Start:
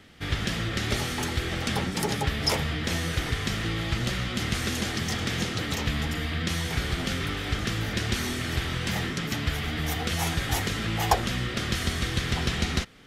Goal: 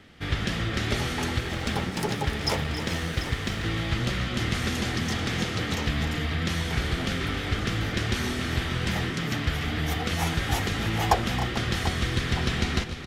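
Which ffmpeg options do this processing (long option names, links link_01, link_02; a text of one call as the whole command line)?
ffmpeg -i in.wav -filter_complex "[0:a]asettb=1/sr,asplit=3[link_01][link_02][link_03];[link_01]atrim=end=1.384[link_04];[link_02]atrim=start=1.38:end=3.64,asetpts=PTS-STARTPTS,afade=type=in:duration=0.004:curve=qsin,afade=type=out:start_time=2.256:duration=0.004:curve=qsin,aeval=exprs='sgn(val(0))*max(abs(val(0))-0.0106,0)':channel_layout=same[link_05];[link_03]atrim=start=3.636[link_06];[link_04][link_05]acrossfade=duration=0.004:curve1=hsin:curve2=qsin[link_07];[link_07][link_06]acrossfade=duration=0.004:curve1=qsin:curve2=hsin,highshelf=frequency=5600:gain=-7,aecho=1:1:271|303|442|740:0.178|0.224|0.141|0.211,volume=1dB" out.wav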